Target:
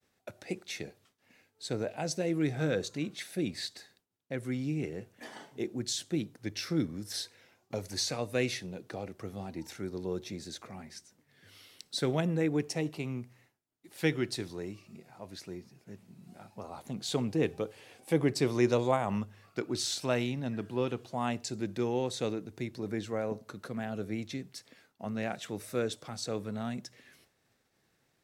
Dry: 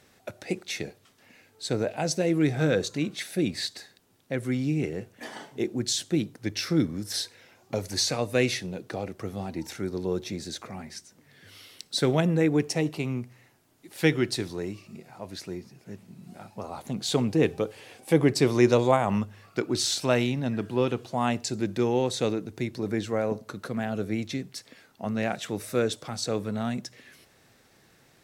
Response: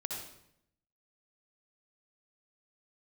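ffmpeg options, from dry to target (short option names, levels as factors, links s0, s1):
-af "agate=range=0.0224:threshold=0.00224:ratio=3:detection=peak,volume=0.473"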